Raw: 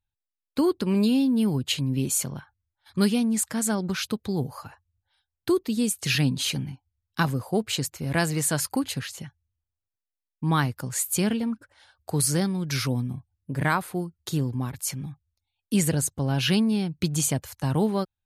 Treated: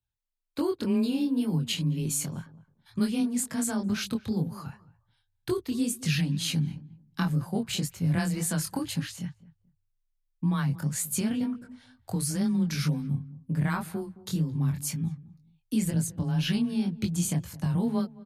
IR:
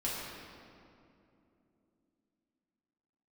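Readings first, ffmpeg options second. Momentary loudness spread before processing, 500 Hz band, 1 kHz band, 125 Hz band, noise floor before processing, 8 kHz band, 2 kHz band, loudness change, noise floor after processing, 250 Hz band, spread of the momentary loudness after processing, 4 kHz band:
12 LU, -6.5 dB, -8.0 dB, -1.0 dB, under -85 dBFS, -5.0 dB, -7.0 dB, -3.5 dB, -76 dBFS, -2.5 dB, 9 LU, -5.0 dB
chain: -filter_complex "[0:a]asubboost=boost=3.5:cutoff=180,acompressor=threshold=-21dB:ratio=6,asplit=2[a][b];[b]adelay=217,lowpass=f=1.1k:p=1,volume=-18dB,asplit=2[c][d];[d]adelay=217,lowpass=f=1.1k:p=1,volume=0.2[e];[c][e]amix=inputs=2:normalize=0[f];[a][f]amix=inputs=2:normalize=0,flanger=delay=20:depth=5.2:speed=2,afreqshift=18"

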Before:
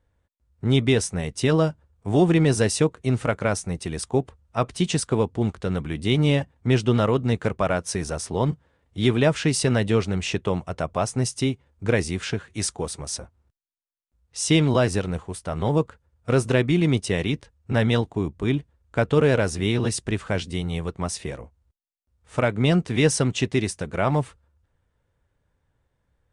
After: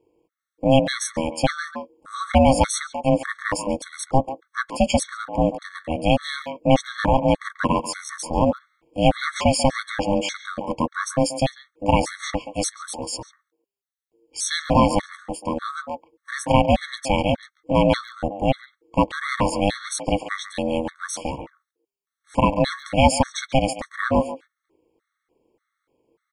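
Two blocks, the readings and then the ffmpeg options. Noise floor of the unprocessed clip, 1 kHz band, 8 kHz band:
-74 dBFS, +9.0 dB, +0.5 dB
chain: -filter_complex "[0:a]aeval=exprs='val(0)*sin(2*PI*400*n/s)':c=same,asplit=2[a][b];[b]adelay=140,highpass=300,lowpass=3.4k,asoftclip=type=hard:threshold=-17dB,volume=-11dB[c];[a][c]amix=inputs=2:normalize=0,afftfilt=real='re*gt(sin(2*PI*1.7*pts/sr)*(1-2*mod(floor(b*sr/1024/1100),2)),0)':imag='im*gt(sin(2*PI*1.7*pts/sr)*(1-2*mod(floor(b*sr/1024/1100),2)),0)':win_size=1024:overlap=0.75,volume=7dB"

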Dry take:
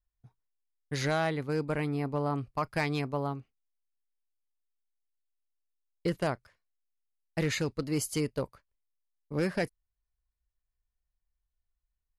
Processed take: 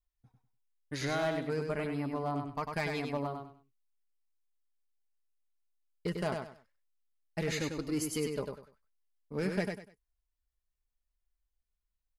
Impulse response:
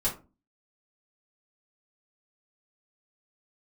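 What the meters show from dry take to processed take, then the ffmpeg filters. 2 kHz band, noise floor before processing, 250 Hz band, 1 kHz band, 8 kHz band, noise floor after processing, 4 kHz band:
-3.0 dB, under -85 dBFS, -2.5 dB, -3.0 dB, -2.5 dB, -85 dBFS, -2.5 dB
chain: -af "flanger=delay=2.8:depth=2.1:regen=38:speed=0.89:shape=sinusoidal,aeval=exprs='clip(val(0),-1,0.0422)':c=same,aecho=1:1:98|196|294:0.562|0.146|0.038"

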